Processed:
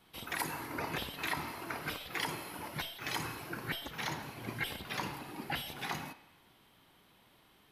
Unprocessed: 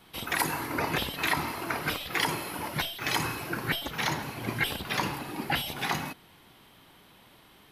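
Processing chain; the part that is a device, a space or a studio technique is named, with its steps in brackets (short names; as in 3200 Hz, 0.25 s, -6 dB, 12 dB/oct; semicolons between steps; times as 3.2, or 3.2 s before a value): filtered reverb send (on a send: HPF 400 Hz + LPF 5200 Hz + reverb RT60 1.1 s, pre-delay 40 ms, DRR 14.5 dB); on the sum: gain -8.5 dB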